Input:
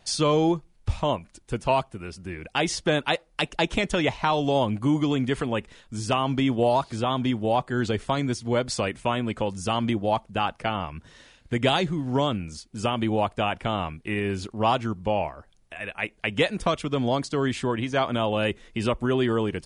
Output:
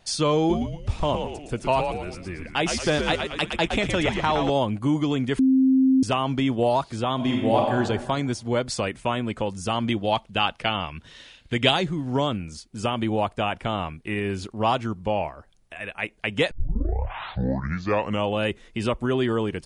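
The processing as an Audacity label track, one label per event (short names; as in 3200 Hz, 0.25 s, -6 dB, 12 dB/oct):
0.380000	4.500000	frequency-shifting echo 0.114 s, feedback 50%, per repeat -100 Hz, level -5.5 dB
5.390000	6.030000	bleep 263 Hz -14.5 dBFS
7.150000	7.750000	reverb throw, RT60 1.2 s, DRR -1 dB
9.900000	11.710000	bell 3200 Hz +9 dB 1.2 oct
16.510000	16.510000	tape start 1.85 s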